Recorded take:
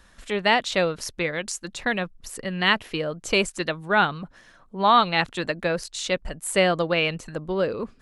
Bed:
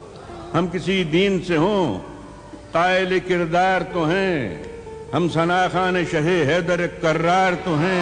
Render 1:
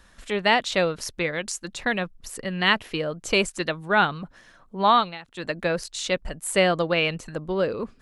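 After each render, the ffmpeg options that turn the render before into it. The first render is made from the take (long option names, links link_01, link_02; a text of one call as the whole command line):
ffmpeg -i in.wav -filter_complex "[0:a]asplit=3[link_01][link_02][link_03];[link_01]atrim=end=5.19,asetpts=PTS-STARTPTS,afade=type=out:start_time=4.9:duration=0.29:silence=0.1[link_04];[link_02]atrim=start=5.19:end=5.27,asetpts=PTS-STARTPTS,volume=-20dB[link_05];[link_03]atrim=start=5.27,asetpts=PTS-STARTPTS,afade=type=in:duration=0.29:silence=0.1[link_06];[link_04][link_05][link_06]concat=n=3:v=0:a=1" out.wav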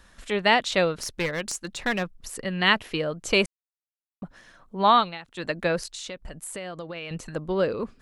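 ffmpeg -i in.wav -filter_complex "[0:a]asettb=1/sr,asplit=3[link_01][link_02][link_03];[link_01]atrim=end=0.934[link_04];[link_02]atrim=start=0.93:end=2.39,asetpts=PTS-STARTPTS,afade=type=in:duration=0.004:curve=qsin,afade=type=out:start_time=1.456:duration=0.004:curve=qsin,aeval=exprs='clip(val(0),-1,0.0501)':channel_layout=same[link_05];[link_03]atrim=start=2.386[link_06];[link_04][link_05]acrossfade=duration=0.004:curve1=hsin:curve2=qsin[link_07];[link_07][link_06]acrossfade=duration=0.004:curve1=qsin:curve2=hsin,asettb=1/sr,asplit=3[link_08][link_09][link_10];[link_08]atrim=end=5.934[link_11];[link_09]atrim=start=5.93:end=7.11,asetpts=PTS-STARTPTS,afade=type=in:duration=0.004:curve=qsin,afade=type=out:start_time=1.176:duration=0.004:curve=qsin,acompressor=threshold=-34dB:ratio=5:attack=3.2:release=140:knee=1:detection=peak[link_12];[link_10]atrim=start=7.106[link_13];[link_11][link_12]acrossfade=duration=0.004:curve1=hsin:curve2=qsin[link_14];[link_14][link_13]acrossfade=duration=0.004:curve1=qsin:curve2=hsin,asplit=3[link_15][link_16][link_17];[link_15]atrim=end=3.46,asetpts=PTS-STARTPTS,afade=type=out:start_time=3.456:duration=0.004:curve=hsin[link_18];[link_16]atrim=start=3.46:end=4.22,asetpts=PTS-STARTPTS,volume=0[link_19];[link_17]atrim=start=4.22,asetpts=PTS-STARTPTS,afade=type=in:duration=0.004:curve=hsin[link_20];[link_18][link_19][link_20]concat=n=3:v=0:a=1" out.wav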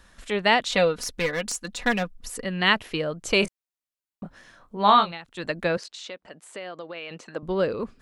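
ffmpeg -i in.wav -filter_complex "[0:a]asettb=1/sr,asplit=3[link_01][link_02][link_03];[link_01]atrim=end=0.694[link_04];[link_02]atrim=start=0.69:end=2.45,asetpts=PTS-STARTPTS,afade=type=in:duration=0.004:curve=qsin,afade=type=out:start_time=1.756:duration=0.004:curve=qsin,aecho=1:1:4.1:0.61,atrim=end_sample=77616[link_05];[link_03]atrim=start=2.446[link_06];[link_04][link_05]acrossfade=duration=0.004:curve1=hsin:curve2=qsin[link_07];[link_07][link_06]acrossfade=duration=0.004:curve1=qsin:curve2=hsin,asettb=1/sr,asplit=3[link_08][link_09][link_10];[link_08]atrim=end=3.404[link_11];[link_09]atrim=start=3.4:end=5.12,asetpts=PTS-STARTPTS,afade=type=in:duration=0.004:curve=qsin,afade=type=out:start_time=1.716:duration=0.004:curve=qsin,asplit=2[link_12][link_13];[link_13]adelay=24,volume=-6dB[link_14];[link_12][link_14]amix=inputs=2:normalize=0,atrim=end_sample=75852[link_15];[link_10]atrim=start=5.116[link_16];[link_11][link_15]acrossfade=duration=0.004:curve1=hsin:curve2=qsin[link_17];[link_17][link_16]acrossfade=duration=0.004:curve1=qsin:curve2=hsin,asettb=1/sr,asplit=3[link_18][link_19][link_20];[link_18]atrim=end=5.774[link_21];[link_19]atrim=start=5.77:end=7.43,asetpts=PTS-STARTPTS,afade=type=in:duration=0.004:curve=qsin,afade=type=out:start_time=1.656:duration=0.004:curve=qsin,highpass=290,lowpass=5200[link_22];[link_20]atrim=start=7.426[link_23];[link_21][link_22]acrossfade=duration=0.004:curve1=hsin:curve2=qsin[link_24];[link_24][link_23]acrossfade=duration=0.004:curve1=qsin:curve2=hsin" out.wav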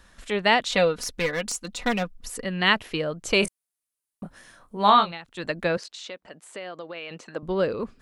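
ffmpeg -i in.wav -filter_complex "[0:a]asettb=1/sr,asplit=3[link_01][link_02][link_03];[link_01]atrim=end=1.494[link_04];[link_02]atrim=start=1.49:end=2.02,asetpts=PTS-STARTPTS,afade=type=in:duration=0.004:curve=qsin,afade=type=out:start_time=0.526:duration=0.004:curve=qsin,bandreject=frequency=1700:width=8.6[link_05];[link_03]atrim=start=2.016[link_06];[link_04][link_05]acrossfade=duration=0.004:curve1=hsin:curve2=qsin[link_07];[link_07][link_06]acrossfade=duration=0.004:curve1=qsin:curve2=hsin,asettb=1/sr,asplit=3[link_08][link_09][link_10];[link_08]atrim=end=3.434[link_11];[link_09]atrim=start=3.43:end=4.9,asetpts=PTS-STARTPTS,afade=type=in:duration=0.004:curve=qsin,afade=type=out:start_time=1.466:duration=0.004:curve=qsin,equalizer=frequency=10000:width=1.5:gain=13.5[link_12];[link_10]atrim=start=4.896[link_13];[link_11][link_12]acrossfade=duration=0.004:curve1=hsin:curve2=qsin[link_14];[link_14][link_13]acrossfade=duration=0.004:curve1=qsin:curve2=hsin" out.wav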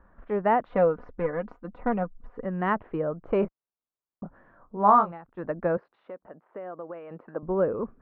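ffmpeg -i in.wav -af "lowpass=frequency=1300:width=0.5412,lowpass=frequency=1300:width=1.3066,equalizer=frequency=63:width_type=o:width=3:gain=-2.5" out.wav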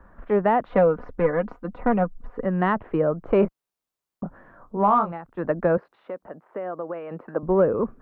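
ffmpeg -i in.wav -filter_complex "[0:a]acrossover=split=180[link_01][link_02];[link_02]alimiter=limit=-16.5dB:level=0:latency=1:release=163[link_03];[link_01][link_03]amix=inputs=2:normalize=0,acontrast=79" out.wav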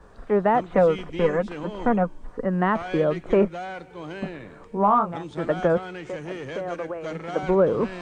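ffmpeg -i in.wav -i bed.wav -filter_complex "[1:a]volume=-16.5dB[link_01];[0:a][link_01]amix=inputs=2:normalize=0" out.wav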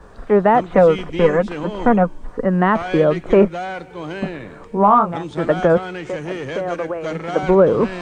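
ffmpeg -i in.wav -af "volume=7dB,alimiter=limit=-3dB:level=0:latency=1" out.wav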